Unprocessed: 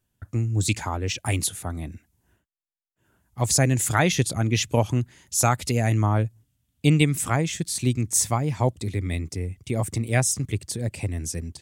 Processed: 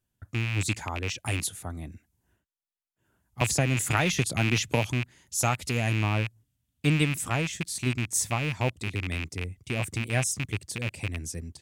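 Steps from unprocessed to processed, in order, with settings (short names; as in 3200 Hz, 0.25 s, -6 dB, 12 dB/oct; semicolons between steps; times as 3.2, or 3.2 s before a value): rattling part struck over -26 dBFS, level -15 dBFS; 3.41–4.92 three-band squash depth 100%; gain -5.5 dB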